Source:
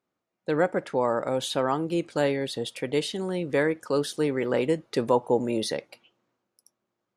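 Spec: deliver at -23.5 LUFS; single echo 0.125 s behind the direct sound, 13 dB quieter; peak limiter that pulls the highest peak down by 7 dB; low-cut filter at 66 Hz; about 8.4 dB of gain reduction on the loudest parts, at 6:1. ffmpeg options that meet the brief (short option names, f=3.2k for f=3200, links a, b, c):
-af "highpass=66,acompressor=threshold=-26dB:ratio=6,alimiter=limit=-22dB:level=0:latency=1,aecho=1:1:125:0.224,volume=9.5dB"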